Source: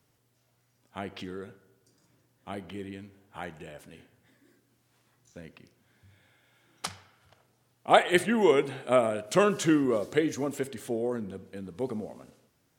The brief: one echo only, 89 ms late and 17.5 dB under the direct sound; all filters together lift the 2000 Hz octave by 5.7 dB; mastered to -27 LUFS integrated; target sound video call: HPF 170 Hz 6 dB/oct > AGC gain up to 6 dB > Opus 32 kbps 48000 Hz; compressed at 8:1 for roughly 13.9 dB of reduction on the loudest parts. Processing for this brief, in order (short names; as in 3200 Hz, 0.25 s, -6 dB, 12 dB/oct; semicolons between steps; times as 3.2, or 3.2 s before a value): bell 2000 Hz +7 dB; compressor 8:1, threshold -27 dBFS; HPF 170 Hz 6 dB/oct; echo 89 ms -17.5 dB; AGC gain up to 6 dB; gain +9.5 dB; Opus 32 kbps 48000 Hz